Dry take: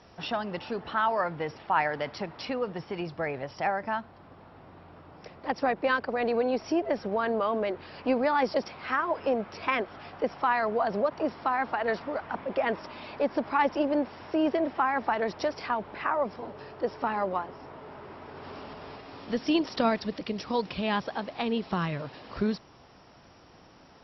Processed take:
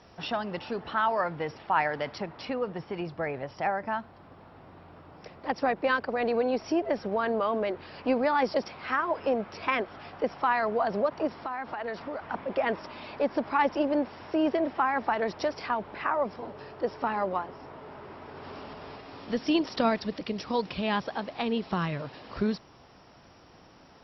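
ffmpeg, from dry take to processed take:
-filter_complex "[0:a]asettb=1/sr,asplit=3[s0][s1][s2];[s0]atrim=end=2.184[s3];[s1]atrim=start=2.18:end=4,asetpts=PTS-STARTPTS,afade=t=in:d=0.004:c=qsin,afade=t=out:st=1.816:d=0.004:c=qsin,highshelf=f=4000:g=-7[s4];[s2]atrim=start=3.996[s5];[s3][s4]acrossfade=d=0.004:c1=hsin:c2=qsin[s6];[s6][s5]acrossfade=d=0.004:c1=qsin:c2=hsin,asettb=1/sr,asplit=3[s7][s8][s9];[s7]atrim=end=11.274[s10];[s8]atrim=start=11.27:end=12.26,asetpts=PTS-STARTPTS,afade=t=in:d=0.004:c=qsin,afade=t=out:st=0.986:d=0.004:c=qsin,acompressor=threshold=0.0251:ratio=3:attack=3.2:release=140:knee=1:detection=peak[s11];[s9]atrim=start=12.256[s12];[s10][s11]acrossfade=d=0.004:c1=hsin:c2=qsin[s13];[s13][s12]acrossfade=d=0.004:c1=qsin:c2=hsin"

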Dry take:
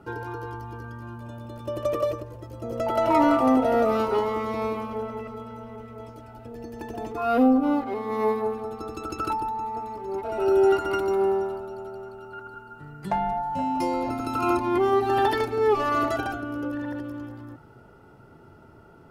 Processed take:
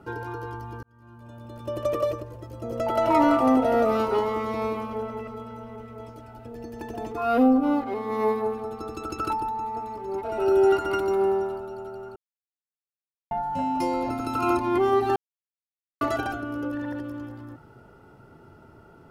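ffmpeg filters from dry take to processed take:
-filter_complex "[0:a]asplit=6[s0][s1][s2][s3][s4][s5];[s0]atrim=end=0.83,asetpts=PTS-STARTPTS,afade=t=out:st=0.826:d=0.004:c=hsin[s6];[s1]atrim=start=0.83:end=12.16,asetpts=PTS-STARTPTS,afade=t=in:d=0.9,afade=t=out:st=11.326:d=0.004:c=hsin[s7];[s2]atrim=start=12.16:end=13.31,asetpts=PTS-STARTPTS,volume=0[s8];[s3]atrim=start=13.31:end=15.16,asetpts=PTS-STARTPTS,afade=t=in:d=0.004:c=hsin,afade=t=out:st=1.846:d=0.004:c=hsin[s9];[s4]atrim=start=15.16:end=16.01,asetpts=PTS-STARTPTS,volume=0[s10];[s5]atrim=start=16.01,asetpts=PTS-STARTPTS,afade=t=in:d=0.004:c=hsin[s11];[s6][s7][s8][s9][s10][s11]concat=n=6:v=0:a=1"

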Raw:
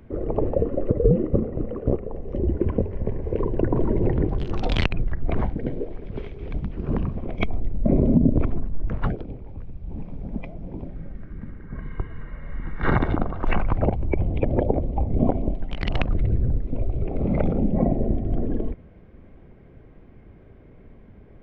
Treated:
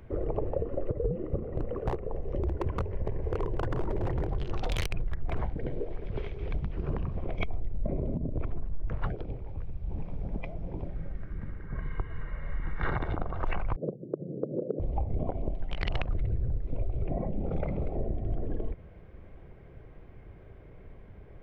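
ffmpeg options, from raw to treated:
-filter_complex "[0:a]asettb=1/sr,asplit=3[s0][s1][s2];[s0]atrim=end=1.574[s3];[s1]atrim=start=1.57:end=5.39,asetpts=PTS-STARTPTS,afade=t=in:d=0.004:c=qsin,afade=t=out:st=3.816:d=0.004:c=qsin,aeval=exprs='0.178*(abs(mod(val(0)/0.178+3,4)-2)-1)':c=same[s4];[s2]atrim=start=5.386[s5];[s3][s4]acrossfade=d=0.004:c1=hsin:c2=qsin[s6];[s6][s5]acrossfade=d=0.004:c1=qsin:c2=hsin,asettb=1/sr,asplit=3[s7][s8][s9];[s7]atrim=end=13.764[s10];[s8]atrim=start=13.76:end=14.8,asetpts=PTS-STARTPTS,afade=t=in:d=0.004:c=qsin,afade=t=out:st=1.036:d=0.004:c=qsin,asuperpass=centerf=280:order=12:qfactor=0.71[s11];[s9]atrim=start=14.796[s12];[s10][s11]acrossfade=d=0.004:c1=hsin:c2=qsin[s13];[s13][s12]acrossfade=d=0.004:c1=qsin:c2=hsin,asplit=3[s14][s15][s16];[s14]atrim=end=17.092[s17];[s15]atrim=start=17.088:end=17.952,asetpts=PTS-STARTPTS,areverse[s18];[s16]atrim=start=17.948[s19];[s17][s18]acrossfade=d=0.004:c1=hsin:c2=hsin[s20];[s20][s19]acrossfade=d=0.004:c1=hsin:c2=hsin,acompressor=threshold=0.0562:ratio=6,equalizer=f=240:t=o:w=0.81:g=-9"

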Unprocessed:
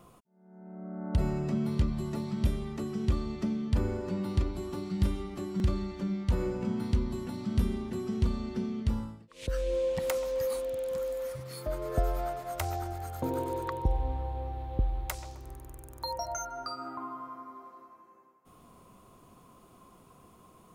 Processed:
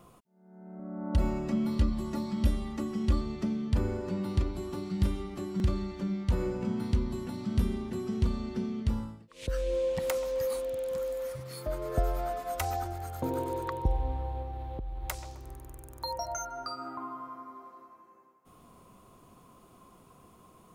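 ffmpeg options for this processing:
-filter_complex "[0:a]asettb=1/sr,asplit=3[s0][s1][s2];[s0]atrim=end=0.794[s3];[s1]atrim=start=0.79:end=3.21,asetpts=PTS-STARTPTS,afade=t=in:d=0.004:c=qsin,afade=t=out:st=2.416:d=0.004:c=qsin,aecho=1:1:3.6:0.65,atrim=end_sample=106722[s4];[s2]atrim=start=3.206[s5];[s3][s4]acrossfade=d=0.004:c1=hsin:c2=qsin[s6];[s6][s5]acrossfade=d=0.004:c1=qsin:c2=hsin,asettb=1/sr,asplit=3[s7][s8][s9];[s7]atrim=end=12.294[s10];[s8]atrim=start=12.29:end=12.85,asetpts=PTS-STARTPTS,afade=t=in:d=0.004:c=qsin,afade=t=out:st=0.556:d=0.004:c=qsin,aecho=1:1:4:0.71,atrim=end_sample=24696[s11];[s9]atrim=start=12.846[s12];[s10][s11]acrossfade=d=0.004:c1=hsin:c2=qsin[s13];[s13][s12]acrossfade=d=0.004:c1=qsin:c2=hsin,asettb=1/sr,asplit=3[s14][s15][s16];[s14]atrim=end=14.424[s17];[s15]atrim=start=14.42:end=15.04,asetpts=PTS-STARTPTS,afade=t=in:d=0.004:c=qsin,afade=t=out:st=0.616:d=0.004:c=qsin,acompressor=threshold=0.0224:ratio=10:attack=3.2:release=140:knee=1:detection=peak[s18];[s16]atrim=start=15.036[s19];[s17][s18]acrossfade=d=0.004:c1=hsin:c2=qsin[s20];[s20][s19]acrossfade=d=0.004:c1=qsin:c2=hsin"

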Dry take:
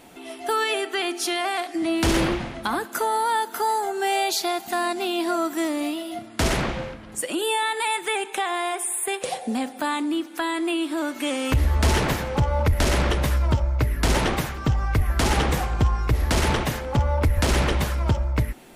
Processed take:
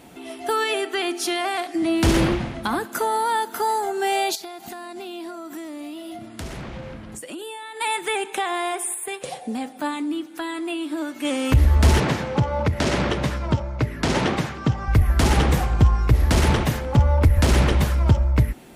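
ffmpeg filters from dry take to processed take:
-filter_complex "[0:a]asettb=1/sr,asplit=3[s0][s1][s2];[s0]atrim=end=4.354[s3];[s1]atrim=start=4.35:end=7.81,asetpts=PTS-STARTPTS,afade=t=in:d=0.004:c=qsin,afade=t=out:st=3.456:d=0.004:c=qsin,acompressor=threshold=0.0224:ratio=8:attack=3.2:release=140:knee=1:detection=peak[s4];[s2]atrim=start=7.806[s5];[s3][s4]acrossfade=d=0.004:c1=hsin:c2=qsin[s6];[s6][s5]acrossfade=d=0.004:c1=qsin:c2=hsin,asettb=1/sr,asplit=3[s7][s8][s9];[s7]atrim=end=8.944[s10];[s8]atrim=start=8.94:end=11.25,asetpts=PTS-STARTPTS,afade=t=in:d=0.004:c=qsin,afade=t=out:st=2.306:d=0.004:c=qsin,flanger=delay=6.2:depth=1.1:regen=64:speed=1.4:shape=triangular[s11];[s9]atrim=start=11.246[s12];[s10][s11]acrossfade=d=0.004:c1=hsin:c2=qsin[s13];[s13][s12]acrossfade=d=0.004:c1=qsin:c2=hsin,asettb=1/sr,asplit=3[s14][s15][s16];[s14]atrim=end=12.004[s17];[s15]atrim=start=12:end=14.88,asetpts=PTS-STARTPTS,afade=t=in:d=0.004:c=qsin,afade=t=out:st=2.876:d=0.004:c=qsin,highpass=130,lowpass=6900[s18];[s16]atrim=start=14.876[s19];[s17][s18]acrossfade=d=0.004:c1=hsin:c2=qsin[s20];[s20][s19]acrossfade=d=0.004:c1=qsin:c2=hsin,highpass=f=110:p=1,lowshelf=f=190:g=12"

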